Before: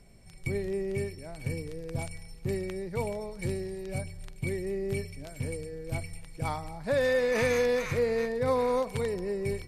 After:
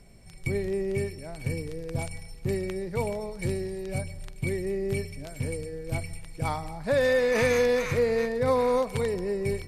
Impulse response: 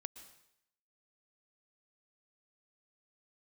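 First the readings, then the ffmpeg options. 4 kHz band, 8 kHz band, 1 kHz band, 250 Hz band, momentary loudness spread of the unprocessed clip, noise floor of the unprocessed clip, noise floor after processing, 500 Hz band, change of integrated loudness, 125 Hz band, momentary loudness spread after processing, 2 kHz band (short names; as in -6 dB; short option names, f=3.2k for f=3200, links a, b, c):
+3.0 dB, +3.0 dB, +3.0 dB, +3.0 dB, 12 LU, -47 dBFS, -44 dBFS, +3.0 dB, +3.0 dB, +3.0 dB, 12 LU, +3.0 dB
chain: -filter_complex "[0:a]asplit=2[a][b];[1:a]atrim=start_sample=2205[c];[b][c]afir=irnorm=-1:irlink=0,volume=-3.5dB[d];[a][d]amix=inputs=2:normalize=0"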